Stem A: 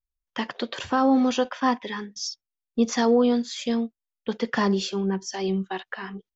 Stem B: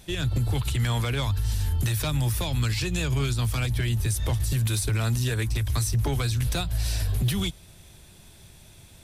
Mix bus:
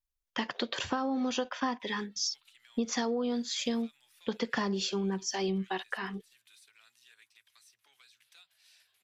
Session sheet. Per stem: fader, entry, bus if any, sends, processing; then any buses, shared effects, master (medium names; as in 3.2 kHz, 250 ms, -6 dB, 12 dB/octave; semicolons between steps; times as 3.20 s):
-2.5 dB, 0.00 s, no send, treble shelf 3 kHz +11 dB
-7.5 dB, 1.80 s, no send, compression 4:1, threshold -31 dBFS, peak gain reduction 9 dB; Chebyshev high-pass 2.8 kHz, order 2; treble shelf 3 kHz -11 dB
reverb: none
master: treble shelf 3.6 kHz -7.5 dB; compression 12:1, threshold -27 dBFS, peak gain reduction 10.5 dB